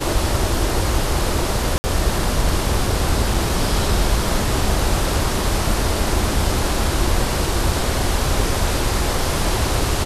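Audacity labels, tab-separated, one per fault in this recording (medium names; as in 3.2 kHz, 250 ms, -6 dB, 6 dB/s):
1.780000	1.840000	dropout 60 ms
3.340000	3.340000	dropout 3.5 ms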